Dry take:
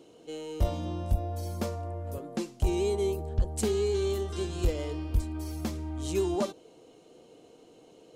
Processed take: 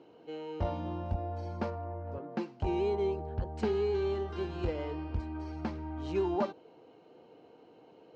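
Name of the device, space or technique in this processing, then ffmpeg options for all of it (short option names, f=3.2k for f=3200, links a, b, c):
guitar cabinet: -filter_complex "[0:a]highpass=78,equalizer=f=870:t=q:w=4:g=8,equalizer=f=1.5k:t=q:w=4:g=5,equalizer=f=3.5k:t=q:w=4:g=-8,lowpass=f=4k:w=0.5412,lowpass=f=4k:w=1.3066,asettb=1/sr,asplit=3[a][b][c];[a]atrim=end=1.704[d];[b]atrim=start=1.7:end=2.29,asetpts=PTS-STARTPTS,afade=t=in:d=0.004:c=qsin,afade=t=out:st=0.586:d=0.004:c=qsin,highshelf=f=4k:g=-11.5[e];[c]atrim=start=2.286[f];[d][e]acrossfade=d=0.004:c1=hsin:c2=qsin[g];[g][f]acrossfade=d=0.004:c1=qsin:c2=hsin,volume=-2.5dB"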